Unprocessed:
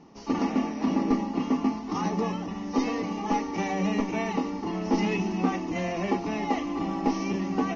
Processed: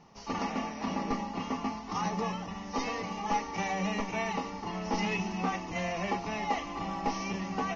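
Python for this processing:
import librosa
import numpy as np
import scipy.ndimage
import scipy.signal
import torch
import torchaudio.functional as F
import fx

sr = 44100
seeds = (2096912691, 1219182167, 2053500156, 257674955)

y = fx.peak_eq(x, sr, hz=300.0, db=-14.0, octaves=1.0)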